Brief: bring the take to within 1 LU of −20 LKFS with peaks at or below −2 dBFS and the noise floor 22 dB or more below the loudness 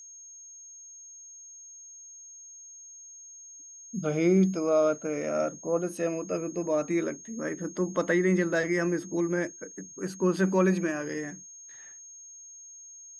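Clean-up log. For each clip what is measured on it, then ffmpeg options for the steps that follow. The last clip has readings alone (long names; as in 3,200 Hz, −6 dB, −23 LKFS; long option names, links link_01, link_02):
interfering tone 6,500 Hz; level of the tone −45 dBFS; integrated loudness −28.0 LKFS; sample peak −13.0 dBFS; target loudness −20.0 LKFS
→ -af "bandreject=frequency=6500:width=30"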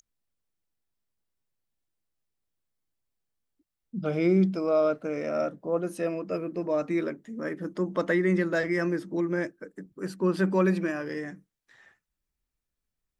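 interfering tone none found; integrated loudness −28.0 LKFS; sample peak −13.5 dBFS; target loudness −20.0 LKFS
→ -af "volume=8dB"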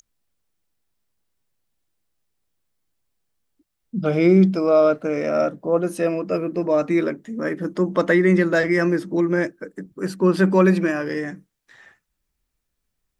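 integrated loudness −20.0 LKFS; sample peak −5.5 dBFS; background noise floor −78 dBFS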